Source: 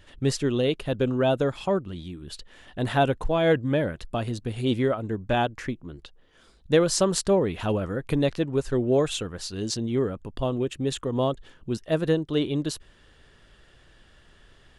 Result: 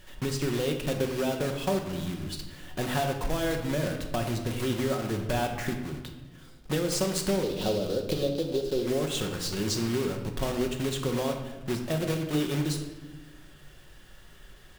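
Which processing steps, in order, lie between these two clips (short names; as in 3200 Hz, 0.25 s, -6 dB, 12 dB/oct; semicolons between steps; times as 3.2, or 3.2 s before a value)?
block floating point 3-bit; 7.43–8.83 graphic EQ 125/500/1000/2000/4000/8000 Hz -6/+11/-7/-11/+11/-4 dB; compressor 10:1, threshold -26 dBFS, peak gain reduction 13.5 dB; shoebox room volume 660 m³, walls mixed, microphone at 1 m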